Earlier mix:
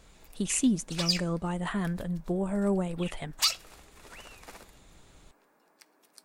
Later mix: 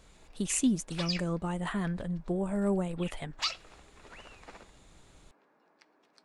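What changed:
background: add high-frequency loss of the air 160 metres
reverb: off

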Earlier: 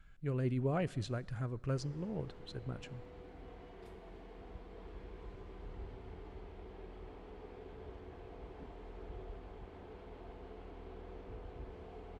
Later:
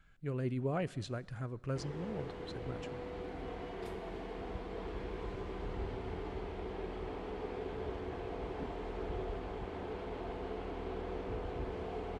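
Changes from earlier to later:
background +11.0 dB
master: add low-shelf EQ 85 Hz −7.5 dB

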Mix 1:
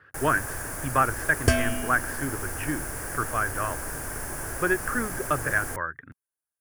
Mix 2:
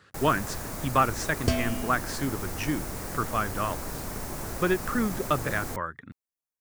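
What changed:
speech: remove high-frequency loss of the air 260 metres
second sound −4.5 dB
master: add thirty-one-band graphic EQ 200 Hz +12 dB, 1,600 Hz −11 dB, 4,000 Hz +10 dB, 10,000 Hz −11 dB

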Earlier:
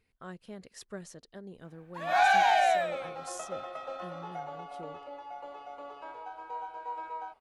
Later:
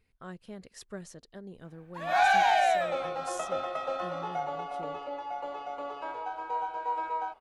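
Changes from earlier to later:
second sound +6.5 dB
master: add low-shelf EQ 96 Hz +6.5 dB

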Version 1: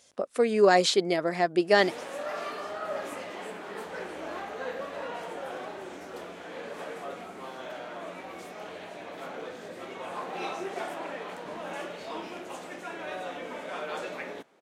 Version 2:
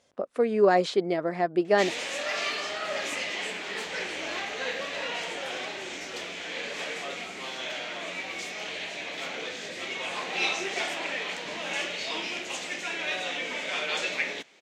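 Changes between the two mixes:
speech: add low-pass filter 1,600 Hz 6 dB per octave
background: add flat-topped bell 3,800 Hz +14.5 dB 2.3 octaves

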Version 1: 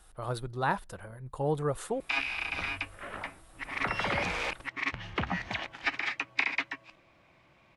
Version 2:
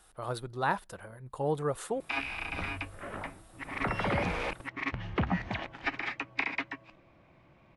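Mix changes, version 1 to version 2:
background: add spectral tilt −3 dB per octave
master: add low-shelf EQ 93 Hz −10 dB

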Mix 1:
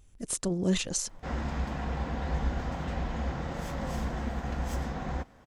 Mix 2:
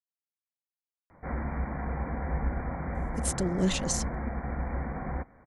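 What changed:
speech: entry +2.95 s
background: add linear-phase brick-wall low-pass 2,400 Hz

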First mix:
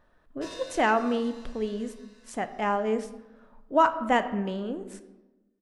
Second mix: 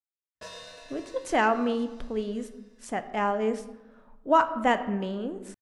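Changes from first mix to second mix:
speech: entry +0.55 s
background: send off

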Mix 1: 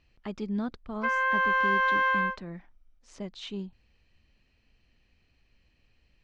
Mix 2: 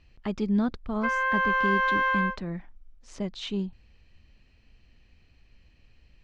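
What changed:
speech +4.5 dB
master: add low-shelf EQ 160 Hz +5.5 dB

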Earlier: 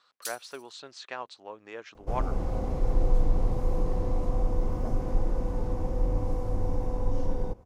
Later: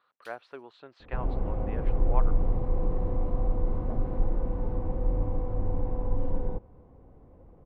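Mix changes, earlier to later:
second sound: entry −0.95 s
master: add high-frequency loss of the air 500 metres

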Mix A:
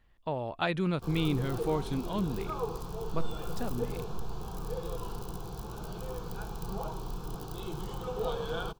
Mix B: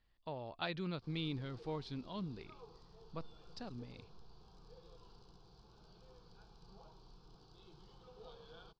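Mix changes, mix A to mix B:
background −11.5 dB
master: add transistor ladder low-pass 5,200 Hz, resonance 65%

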